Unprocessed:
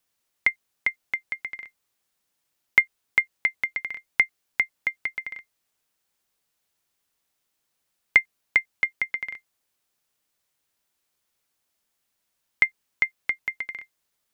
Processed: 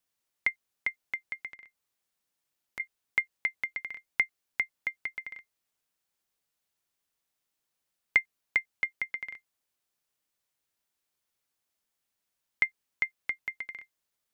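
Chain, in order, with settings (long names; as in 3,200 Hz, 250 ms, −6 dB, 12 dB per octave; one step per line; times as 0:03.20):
0:01.47–0:02.80: downward compressor 4 to 1, threshold −41 dBFS, peak gain reduction 24 dB
level −6.5 dB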